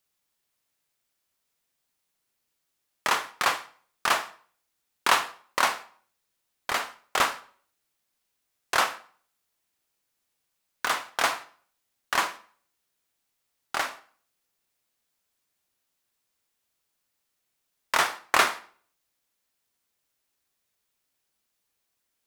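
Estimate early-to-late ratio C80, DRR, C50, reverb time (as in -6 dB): 20.0 dB, 11.0 dB, 16.0 dB, 0.50 s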